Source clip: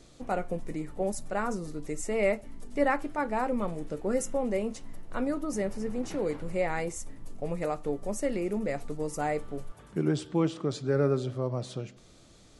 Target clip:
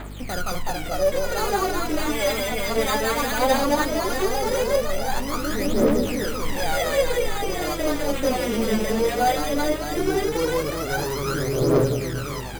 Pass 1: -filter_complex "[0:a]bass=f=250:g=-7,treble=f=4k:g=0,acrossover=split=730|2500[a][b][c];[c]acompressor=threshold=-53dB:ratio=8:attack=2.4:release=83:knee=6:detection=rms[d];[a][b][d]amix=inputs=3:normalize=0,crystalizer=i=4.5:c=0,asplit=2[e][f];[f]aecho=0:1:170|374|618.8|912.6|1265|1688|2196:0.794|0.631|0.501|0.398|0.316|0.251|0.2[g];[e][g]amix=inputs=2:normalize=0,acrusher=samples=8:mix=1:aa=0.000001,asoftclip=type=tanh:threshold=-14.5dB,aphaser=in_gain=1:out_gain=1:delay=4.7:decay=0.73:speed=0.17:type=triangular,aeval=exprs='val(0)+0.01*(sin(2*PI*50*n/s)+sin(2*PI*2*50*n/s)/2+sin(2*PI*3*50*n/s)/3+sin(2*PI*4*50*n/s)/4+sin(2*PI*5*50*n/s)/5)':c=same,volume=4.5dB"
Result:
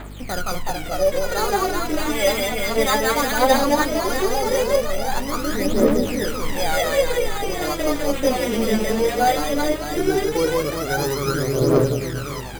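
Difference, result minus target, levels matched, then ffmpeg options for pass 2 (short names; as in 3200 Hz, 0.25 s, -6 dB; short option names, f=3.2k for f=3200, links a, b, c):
soft clip: distortion -13 dB
-filter_complex "[0:a]bass=f=250:g=-7,treble=f=4k:g=0,acrossover=split=730|2500[a][b][c];[c]acompressor=threshold=-53dB:ratio=8:attack=2.4:release=83:knee=6:detection=rms[d];[a][b][d]amix=inputs=3:normalize=0,crystalizer=i=4.5:c=0,asplit=2[e][f];[f]aecho=0:1:170|374|618.8|912.6|1265|1688|2196:0.794|0.631|0.501|0.398|0.316|0.251|0.2[g];[e][g]amix=inputs=2:normalize=0,acrusher=samples=8:mix=1:aa=0.000001,asoftclip=type=tanh:threshold=-25dB,aphaser=in_gain=1:out_gain=1:delay=4.7:decay=0.73:speed=0.17:type=triangular,aeval=exprs='val(0)+0.01*(sin(2*PI*50*n/s)+sin(2*PI*2*50*n/s)/2+sin(2*PI*3*50*n/s)/3+sin(2*PI*4*50*n/s)/4+sin(2*PI*5*50*n/s)/5)':c=same,volume=4.5dB"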